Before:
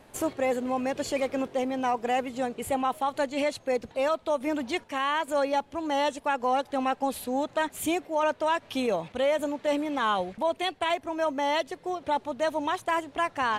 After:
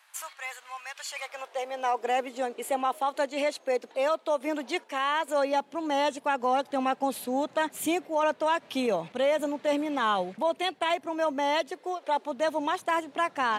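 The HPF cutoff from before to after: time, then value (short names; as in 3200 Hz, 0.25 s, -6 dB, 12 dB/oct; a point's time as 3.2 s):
HPF 24 dB/oct
1.05 s 1100 Hz
2.1 s 300 Hz
5.3 s 300 Hz
5.87 s 140 Hz
11.56 s 140 Hz
12 s 450 Hz
12.44 s 150 Hz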